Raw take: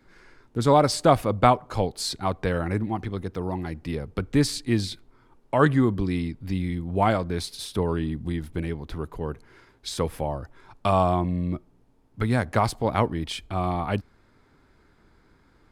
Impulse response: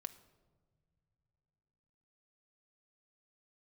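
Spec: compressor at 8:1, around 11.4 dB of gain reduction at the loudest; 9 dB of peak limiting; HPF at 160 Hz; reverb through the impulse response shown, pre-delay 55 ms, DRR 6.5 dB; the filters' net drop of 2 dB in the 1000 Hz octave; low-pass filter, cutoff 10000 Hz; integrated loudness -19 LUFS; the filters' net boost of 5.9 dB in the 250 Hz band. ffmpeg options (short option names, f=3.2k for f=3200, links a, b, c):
-filter_complex "[0:a]highpass=160,lowpass=10k,equalizer=f=250:t=o:g=8.5,equalizer=f=1k:t=o:g=-3.5,acompressor=threshold=-22dB:ratio=8,alimiter=limit=-19.5dB:level=0:latency=1,asplit=2[a][b];[1:a]atrim=start_sample=2205,adelay=55[c];[b][c]afir=irnorm=-1:irlink=0,volume=-3dB[d];[a][d]amix=inputs=2:normalize=0,volume=11dB"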